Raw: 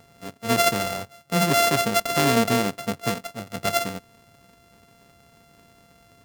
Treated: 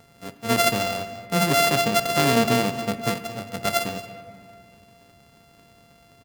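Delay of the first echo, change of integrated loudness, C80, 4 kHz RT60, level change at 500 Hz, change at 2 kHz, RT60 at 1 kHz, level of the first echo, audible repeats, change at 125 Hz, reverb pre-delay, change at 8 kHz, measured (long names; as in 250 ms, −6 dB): 225 ms, +0.5 dB, 11.5 dB, 1.4 s, +0.5 dB, +1.0 dB, 2.0 s, −16.5 dB, 1, +0.5 dB, 7 ms, −0.5 dB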